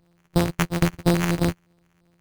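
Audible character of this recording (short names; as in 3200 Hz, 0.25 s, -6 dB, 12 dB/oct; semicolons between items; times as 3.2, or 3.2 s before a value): a buzz of ramps at a fixed pitch in blocks of 256 samples; phasing stages 2, 3 Hz, lowest notch 510–1600 Hz; aliases and images of a low sample rate 4400 Hz, jitter 0%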